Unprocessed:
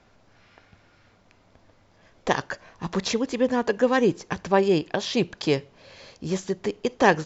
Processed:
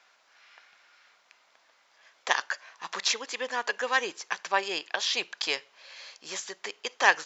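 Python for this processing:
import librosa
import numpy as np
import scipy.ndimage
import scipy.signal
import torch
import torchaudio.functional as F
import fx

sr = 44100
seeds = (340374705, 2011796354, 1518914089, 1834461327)

y = scipy.signal.sosfilt(scipy.signal.butter(2, 1200.0, 'highpass', fs=sr, output='sos'), x)
y = y * 10.0 ** (3.0 / 20.0)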